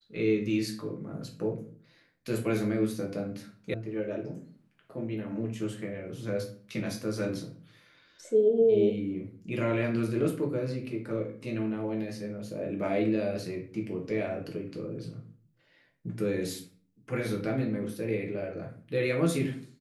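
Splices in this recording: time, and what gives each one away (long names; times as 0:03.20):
0:03.74: cut off before it has died away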